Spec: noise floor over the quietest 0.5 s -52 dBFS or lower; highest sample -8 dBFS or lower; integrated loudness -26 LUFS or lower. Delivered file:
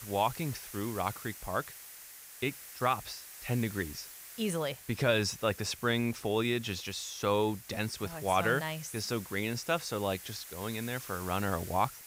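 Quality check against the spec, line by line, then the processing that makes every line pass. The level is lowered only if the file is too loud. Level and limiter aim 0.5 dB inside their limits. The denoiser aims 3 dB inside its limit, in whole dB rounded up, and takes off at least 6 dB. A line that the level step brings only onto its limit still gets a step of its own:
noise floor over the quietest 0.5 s -50 dBFS: fail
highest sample -14.5 dBFS: OK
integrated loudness -33.5 LUFS: OK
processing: denoiser 6 dB, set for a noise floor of -50 dBFS

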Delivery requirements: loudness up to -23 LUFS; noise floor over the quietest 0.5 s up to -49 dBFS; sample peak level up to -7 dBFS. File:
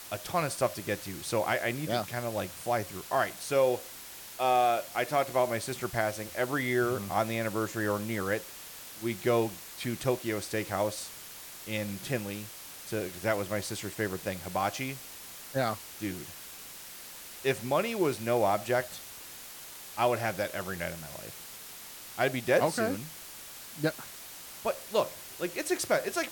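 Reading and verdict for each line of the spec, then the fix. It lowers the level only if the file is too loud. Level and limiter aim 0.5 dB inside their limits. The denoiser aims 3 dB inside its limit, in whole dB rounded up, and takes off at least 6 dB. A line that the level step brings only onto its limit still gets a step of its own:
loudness -31.5 LUFS: OK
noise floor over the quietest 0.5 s -46 dBFS: fail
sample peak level -13.5 dBFS: OK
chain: denoiser 6 dB, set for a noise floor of -46 dBFS

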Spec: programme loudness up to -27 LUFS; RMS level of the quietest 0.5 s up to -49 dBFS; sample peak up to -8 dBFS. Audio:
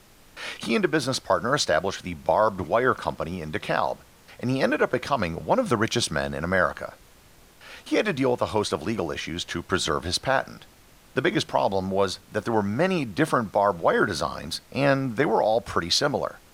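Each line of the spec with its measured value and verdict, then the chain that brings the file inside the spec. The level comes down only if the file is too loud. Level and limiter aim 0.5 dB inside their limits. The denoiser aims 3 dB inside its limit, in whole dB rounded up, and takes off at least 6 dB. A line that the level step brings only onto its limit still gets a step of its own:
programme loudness -25.0 LUFS: fail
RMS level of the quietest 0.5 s -53 dBFS: OK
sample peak -7.5 dBFS: fail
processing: gain -2.5 dB

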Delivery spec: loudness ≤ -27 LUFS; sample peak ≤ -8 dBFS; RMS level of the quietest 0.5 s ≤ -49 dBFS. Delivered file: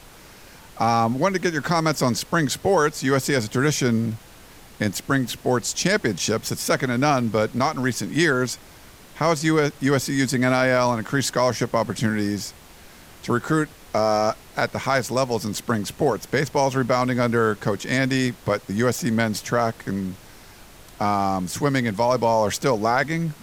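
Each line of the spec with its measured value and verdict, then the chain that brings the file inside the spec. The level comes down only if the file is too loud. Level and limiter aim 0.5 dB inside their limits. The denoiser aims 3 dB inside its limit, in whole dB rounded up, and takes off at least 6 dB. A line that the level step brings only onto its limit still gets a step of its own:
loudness -22.0 LUFS: fail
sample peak -6.5 dBFS: fail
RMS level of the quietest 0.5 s -46 dBFS: fail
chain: gain -5.5 dB

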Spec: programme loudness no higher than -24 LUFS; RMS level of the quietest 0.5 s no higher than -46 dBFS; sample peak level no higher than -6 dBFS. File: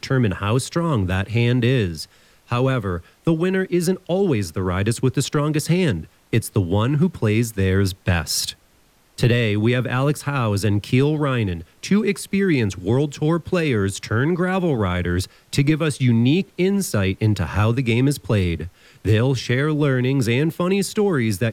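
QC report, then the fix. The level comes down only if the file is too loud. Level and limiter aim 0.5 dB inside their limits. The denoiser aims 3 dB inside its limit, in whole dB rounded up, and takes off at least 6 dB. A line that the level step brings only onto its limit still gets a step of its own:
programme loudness -20.5 LUFS: fail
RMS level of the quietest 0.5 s -57 dBFS: OK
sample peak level -4.5 dBFS: fail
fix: gain -4 dB

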